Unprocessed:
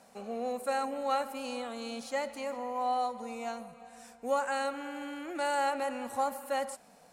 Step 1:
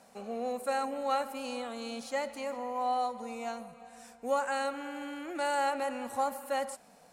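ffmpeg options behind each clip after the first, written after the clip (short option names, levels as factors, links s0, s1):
-af anull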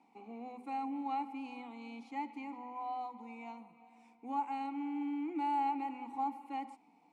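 -filter_complex "[0:a]asplit=3[s0][s1][s2];[s0]bandpass=f=300:t=q:w=8,volume=1[s3];[s1]bandpass=f=870:t=q:w=8,volume=0.501[s4];[s2]bandpass=f=2240:t=q:w=8,volume=0.355[s5];[s3][s4][s5]amix=inputs=3:normalize=0,bandreject=f=50:t=h:w=6,bandreject=f=100:t=h:w=6,bandreject=f=150:t=h:w=6,bandreject=f=200:t=h:w=6,bandreject=f=250:t=h:w=6,volume=2.11"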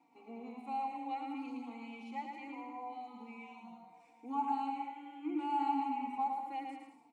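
-filter_complex "[0:a]asplit=2[s0][s1];[s1]aecho=0:1:110|192.5|254.4|300.8|335.6:0.631|0.398|0.251|0.158|0.1[s2];[s0][s2]amix=inputs=2:normalize=0,asplit=2[s3][s4];[s4]adelay=3.8,afreqshift=-0.73[s5];[s3][s5]amix=inputs=2:normalize=1,volume=1.12"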